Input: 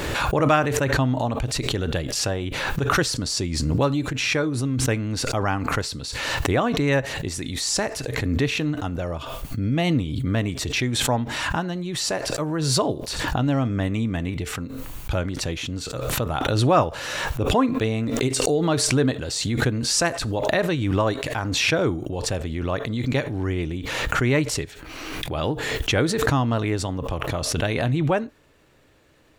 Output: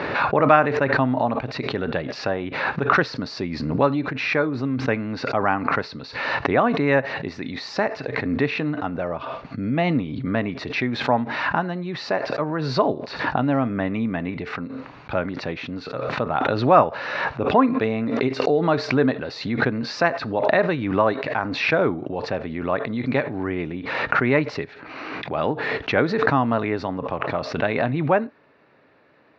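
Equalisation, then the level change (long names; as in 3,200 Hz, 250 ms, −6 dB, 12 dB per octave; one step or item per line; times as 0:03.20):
high-frequency loss of the air 260 metres
loudspeaker in its box 230–4,900 Hz, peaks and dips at 330 Hz −6 dB, 490 Hz −3 dB, 3,200 Hz −10 dB
+6.0 dB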